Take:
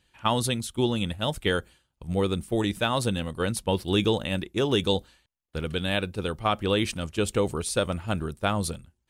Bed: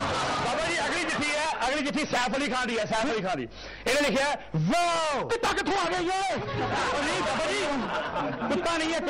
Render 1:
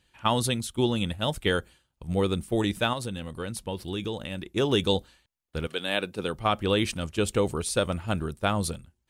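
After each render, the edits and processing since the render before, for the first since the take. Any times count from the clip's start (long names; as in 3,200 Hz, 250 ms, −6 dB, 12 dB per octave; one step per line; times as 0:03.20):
0:02.93–0:04.46: downward compressor 2 to 1, threshold −34 dBFS
0:05.66–0:06.34: high-pass filter 470 Hz → 120 Hz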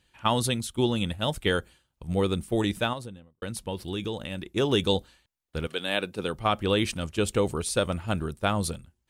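0:02.73–0:03.42: fade out and dull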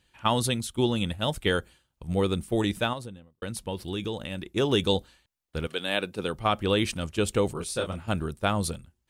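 0:07.53–0:08.08: micro pitch shift up and down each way 45 cents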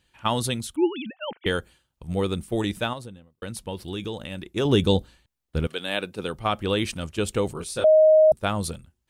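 0:00.76–0:01.46: three sine waves on the formant tracks
0:04.65–0:05.67: low-shelf EQ 380 Hz +8.5 dB
0:07.84–0:08.32: beep over 625 Hz −11.5 dBFS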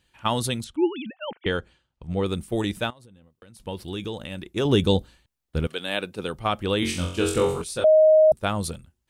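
0:00.64–0:02.26: high-frequency loss of the air 100 metres
0:02.90–0:03.60: downward compressor 5 to 1, threshold −47 dBFS
0:06.80–0:07.62: flutter between parallel walls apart 3.8 metres, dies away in 0.53 s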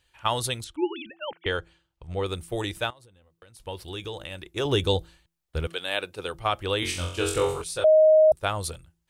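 parametric band 210 Hz −14.5 dB 0.94 octaves
hum removal 167.2 Hz, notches 2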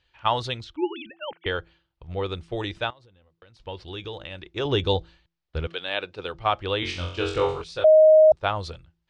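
low-pass filter 5,000 Hz 24 dB per octave
dynamic equaliser 860 Hz, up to +5 dB, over −30 dBFS, Q 1.4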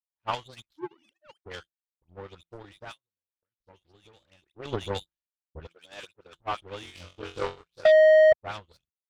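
all-pass dispersion highs, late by 105 ms, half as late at 2,100 Hz
power curve on the samples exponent 2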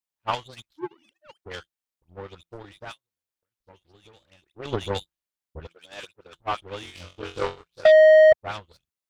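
level +3.5 dB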